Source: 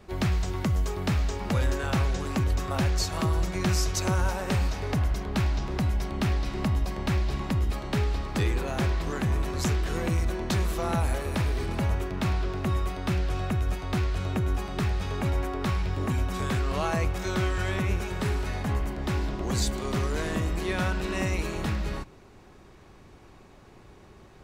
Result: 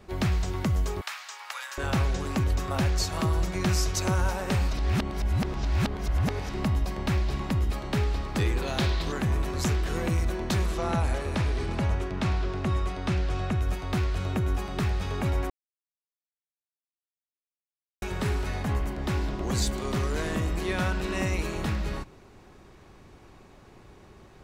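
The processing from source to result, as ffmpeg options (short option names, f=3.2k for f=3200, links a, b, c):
-filter_complex "[0:a]asettb=1/sr,asplit=3[a][b][c];[a]atrim=end=1.014[d];[b]atrim=start=1.01:end=1.78,asetpts=PTS-STARTPTS,afade=t=in:d=0.004:c=qsin,afade=t=out:st=0.766:d=0.004:c=qsin,highpass=f=1k:w=0.5412,highpass=f=1k:w=1.3066[e];[c]atrim=start=1.776[f];[d][e]acrossfade=d=0.004:c1=hsin:c2=qsin[g];[g][f]acrossfade=d=0.004:c1=qsin:c2=hsin,asettb=1/sr,asplit=3[h][i][j];[h]atrim=end=8.624[k];[i]atrim=start=8.62:end=9.12,asetpts=PTS-STARTPTS,afade=t=in:d=0.004:c=qsin,afade=t=out:st=0.496:d=0.004:c=qsin,equalizer=f=3.9k:w=1.6:g=10[l];[j]atrim=start=9.116[m];[k][l]acrossfade=d=0.004:c1=hsin:c2=qsin[n];[n][m]acrossfade=d=0.004:c1=qsin:c2=hsin,asettb=1/sr,asplit=3[o][p][q];[o]atrim=end=10.664[r];[p]atrim=start=10.66:end=13.61,asetpts=PTS-STARTPTS,afade=t=in:d=0.004:c=qsin,afade=t=out:st=2.946:d=0.004:c=qsin,lowpass=8.3k[s];[q]atrim=start=13.606[t];[r][s]acrossfade=d=0.004:c1=hsin:c2=qsin[u];[u][t]acrossfade=d=0.004:c1=qsin:c2=hsin,asettb=1/sr,asplit=3[v][w][x];[v]atrim=end=19.674[y];[w]atrim=start=19.67:end=20.55,asetpts=PTS-STARTPTS,afade=t=in:d=0.004:c=qsin,afade=t=out:st=0.876:d=0.004:c=qsin,volume=20.5dB,asoftclip=hard,volume=-20.5dB[z];[x]atrim=start=20.546[aa];[y][z]acrossfade=d=0.004:c1=hsin:c2=qsin[ab];[ab][aa]acrossfade=d=0.004:c1=qsin:c2=hsin,asplit=5[ac][ad][ae][af][ag];[ac]atrim=end=4.732[ah];[ad]atrim=start=4.728:end=6.492,asetpts=PTS-STARTPTS,areverse[ai];[ae]atrim=start=6.488:end=15.5,asetpts=PTS-STARTPTS,afade=t=out:st=9.008:d=0.004:c=hsin[aj];[af]atrim=start=15.5:end=18.02,asetpts=PTS-STARTPTS,volume=0[ak];[ag]atrim=start=18.02,asetpts=PTS-STARTPTS,afade=t=in:d=0.004:c=hsin[al];[ah][ai]acrossfade=d=0.004:c1=hsin:c2=hsin[am];[aj][ak][al]concat=n=3:v=0:a=1[an];[am][an]acrossfade=d=0.004:c1=hsin:c2=hsin"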